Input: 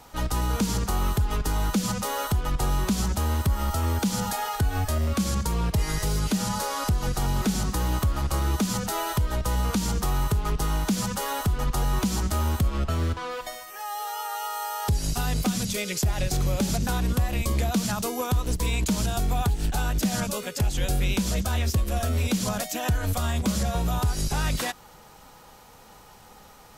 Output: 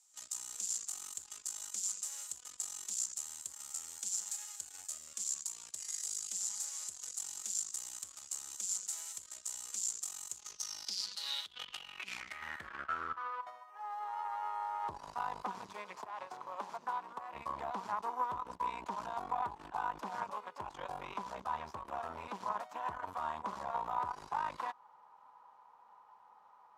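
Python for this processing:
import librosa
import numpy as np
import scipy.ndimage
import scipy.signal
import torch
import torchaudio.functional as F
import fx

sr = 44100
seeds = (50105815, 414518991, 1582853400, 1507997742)

y = fx.highpass(x, sr, hz=270.0, slope=12, at=(15.95, 17.34))
y = fx.cheby_harmonics(y, sr, harmonics=(4, 7), levels_db=(-13, -25), full_scale_db=-15.5)
y = fx.over_compress(y, sr, threshold_db=-26.0, ratio=-0.5, at=(11.23, 12.42))
y = fx.filter_sweep_bandpass(y, sr, from_hz=7300.0, to_hz=990.0, start_s=10.29, end_s=13.54, q=6.7)
y = F.gain(torch.from_numpy(y), 3.0).numpy()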